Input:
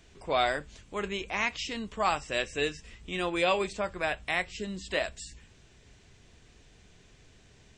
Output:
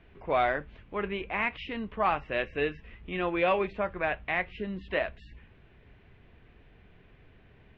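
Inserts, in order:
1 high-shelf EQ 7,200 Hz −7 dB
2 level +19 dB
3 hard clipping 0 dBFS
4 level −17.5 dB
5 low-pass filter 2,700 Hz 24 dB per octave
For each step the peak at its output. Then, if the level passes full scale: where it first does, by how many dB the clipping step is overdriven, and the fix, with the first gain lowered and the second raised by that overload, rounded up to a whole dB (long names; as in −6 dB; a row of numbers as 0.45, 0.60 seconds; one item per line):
−14.0, +5.0, 0.0, −17.5, −16.0 dBFS
step 2, 5.0 dB
step 2 +14 dB, step 4 −12.5 dB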